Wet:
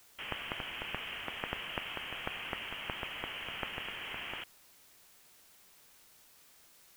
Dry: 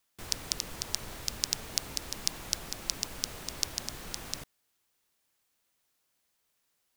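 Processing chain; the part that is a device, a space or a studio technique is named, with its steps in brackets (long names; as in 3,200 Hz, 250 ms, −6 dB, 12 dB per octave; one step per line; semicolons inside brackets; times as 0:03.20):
scrambled radio voice (band-pass filter 390–2,900 Hz; voice inversion scrambler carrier 3,500 Hz; white noise bed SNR 18 dB)
level +7 dB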